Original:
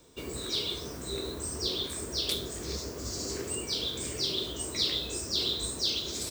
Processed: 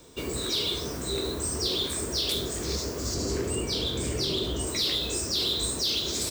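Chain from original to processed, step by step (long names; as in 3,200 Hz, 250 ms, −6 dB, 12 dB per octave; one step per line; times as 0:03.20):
0:03.14–0:04.67: spectral tilt −1.5 dB per octave
in parallel at +1 dB: brickwall limiter −24 dBFS, peak gain reduction 10.5 dB
on the sum: soft clipping −20 dBFS, distortion −18 dB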